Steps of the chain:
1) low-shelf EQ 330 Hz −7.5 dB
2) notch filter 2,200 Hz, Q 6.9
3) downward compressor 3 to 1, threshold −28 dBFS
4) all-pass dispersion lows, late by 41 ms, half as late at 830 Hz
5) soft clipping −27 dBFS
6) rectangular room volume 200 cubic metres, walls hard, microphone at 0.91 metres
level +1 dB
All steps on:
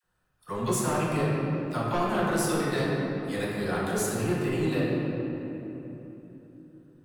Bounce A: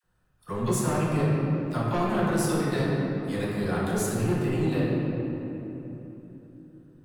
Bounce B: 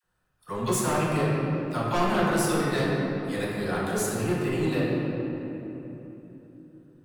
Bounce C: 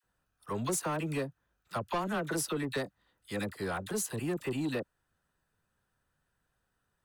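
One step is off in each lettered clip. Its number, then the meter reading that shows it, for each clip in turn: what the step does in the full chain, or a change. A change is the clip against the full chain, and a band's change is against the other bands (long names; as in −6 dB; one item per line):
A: 1, 125 Hz band +4.5 dB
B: 3, average gain reduction 2.0 dB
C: 6, echo-to-direct ratio 5.5 dB to none audible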